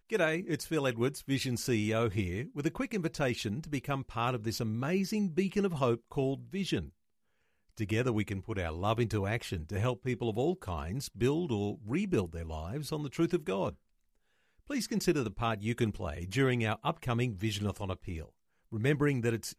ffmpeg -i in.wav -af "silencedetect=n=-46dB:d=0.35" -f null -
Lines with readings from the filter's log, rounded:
silence_start: 6.89
silence_end: 7.77 | silence_duration: 0.88
silence_start: 13.73
silence_end: 14.70 | silence_duration: 0.97
silence_start: 18.25
silence_end: 18.72 | silence_duration: 0.47